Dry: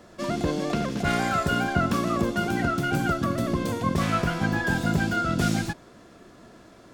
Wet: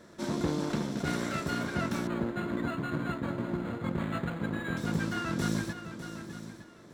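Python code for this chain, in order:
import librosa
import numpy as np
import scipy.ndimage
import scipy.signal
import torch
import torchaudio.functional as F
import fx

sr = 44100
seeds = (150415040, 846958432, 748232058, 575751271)

y = fx.lower_of_two(x, sr, delay_ms=0.52)
y = fx.peak_eq(y, sr, hz=2400.0, db=-5.0, octaves=1.3)
y = fx.notch(y, sr, hz=780.0, q=12.0)
y = y + 10.0 ** (-15.5 / 20.0) * np.pad(y, (int(910 * sr / 1000.0), 0))[:len(y)]
y = fx.rider(y, sr, range_db=10, speed_s=2.0)
y = fx.highpass(y, sr, hz=140.0, slope=6)
y = fx.high_shelf(y, sr, hz=12000.0, db=-8.5)
y = y + 10.0 ** (-11.5 / 20.0) * np.pad(y, (int(602 * sr / 1000.0), 0))[:len(y)]
y = fx.resample_linear(y, sr, factor=8, at=(2.07, 4.77))
y = F.gain(torch.from_numpy(y), -4.5).numpy()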